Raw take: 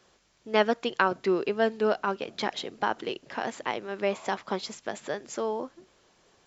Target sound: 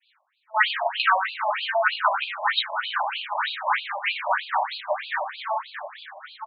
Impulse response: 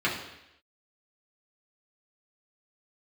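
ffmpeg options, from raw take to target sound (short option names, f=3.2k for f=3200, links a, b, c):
-filter_complex "[0:a]aeval=exprs='if(lt(val(0),0),0.708*val(0),val(0))':c=same,highpass=170,lowpass=6.4k,agate=range=-33dB:threshold=-60dB:ratio=3:detection=peak,bass=f=250:g=10,treble=f=4k:g=12,aecho=1:1:860|1720|2580:0.501|0.11|0.0243,acrossover=split=390[a][b];[a]acrusher=bits=3:mix=0:aa=0.5[c];[c][b]amix=inputs=2:normalize=0[d];[1:a]atrim=start_sample=2205,asetrate=37485,aresample=44100[e];[d][e]afir=irnorm=-1:irlink=0,afftfilt=real='re*between(b*sr/1024,780*pow(3500/780,0.5+0.5*sin(2*PI*3.2*pts/sr))/1.41,780*pow(3500/780,0.5+0.5*sin(2*PI*3.2*pts/sr))*1.41)':imag='im*between(b*sr/1024,780*pow(3500/780,0.5+0.5*sin(2*PI*3.2*pts/sr))/1.41,780*pow(3500/780,0.5+0.5*sin(2*PI*3.2*pts/sr))*1.41)':win_size=1024:overlap=0.75"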